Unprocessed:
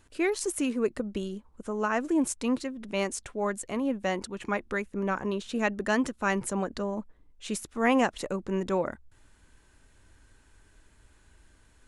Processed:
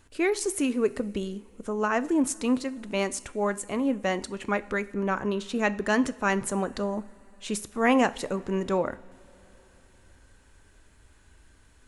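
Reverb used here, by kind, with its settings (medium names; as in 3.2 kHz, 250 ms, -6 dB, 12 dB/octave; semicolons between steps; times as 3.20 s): two-slope reverb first 0.48 s, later 4.2 s, from -18 dB, DRR 14 dB; trim +2 dB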